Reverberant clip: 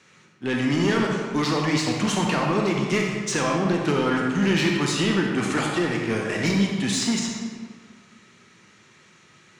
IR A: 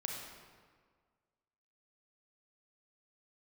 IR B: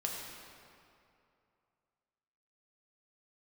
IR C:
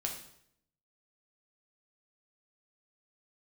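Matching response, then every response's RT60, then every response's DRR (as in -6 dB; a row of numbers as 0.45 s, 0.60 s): A; 1.7 s, 2.6 s, 0.70 s; 0.0 dB, -2.0 dB, 0.5 dB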